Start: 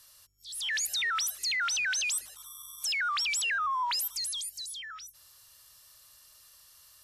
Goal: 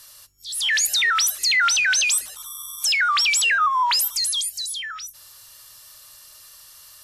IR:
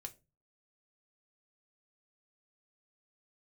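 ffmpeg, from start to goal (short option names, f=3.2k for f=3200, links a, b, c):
-filter_complex "[0:a]asplit=2[a][b];[1:a]atrim=start_sample=2205,asetrate=48510,aresample=44100,lowshelf=f=170:g=-7.5[c];[b][c]afir=irnorm=-1:irlink=0,volume=5dB[d];[a][d]amix=inputs=2:normalize=0,volume=5.5dB"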